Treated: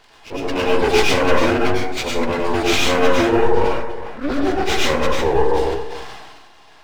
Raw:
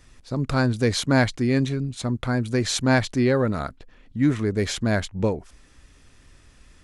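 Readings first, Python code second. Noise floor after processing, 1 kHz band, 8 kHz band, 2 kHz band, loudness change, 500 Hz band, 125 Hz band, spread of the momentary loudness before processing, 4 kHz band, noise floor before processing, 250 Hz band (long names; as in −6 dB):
−46 dBFS, +11.0 dB, +3.5 dB, +6.5 dB, +5.0 dB, +9.0 dB, −5.0 dB, 9 LU, +8.0 dB, −54 dBFS, +1.0 dB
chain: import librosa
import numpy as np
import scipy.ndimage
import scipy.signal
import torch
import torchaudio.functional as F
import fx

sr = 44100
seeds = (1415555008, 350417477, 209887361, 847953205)

p1 = fx.partial_stretch(x, sr, pct=81)
p2 = scipy.signal.sosfilt(scipy.signal.butter(4, 370.0, 'highpass', fs=sr, output='sos'), p1)
p3 = fx.dereverb_blind(p2, sr, rt60_s=0.84)
p4 = fx.band_shelf(p3, sr, hz=900.0, db=-13.0, octaves=1.1)
p5 = fx.rider(p4, sr, range_db=3, speed_s=0.5)
p6 = p4 + F.gain(torch.from_numpy(p5), 2.5).numpy()
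p7 = fx.dmg_noise_band(p6, sr, seeds[0], low_hz=640.0, high_hz=1100.0, level_db=-58.0)
p8 = np.maximum(p7, 0.0)
p9 = p8 + fx.echo_single(p8, sr, ms=408, db=-20.5, dry=0)
p10 = fx.rev_plate(p9, sr, seeds[1], rt60_s=0.69, hf_ratio=0.5, predelay_ms=85, drr_db=-4.5)
p11 = fx.sustainer(p10, sr, db_per_s=33.0)
y = F.gain(torch.from_numpy(p11), 4.5).numpy()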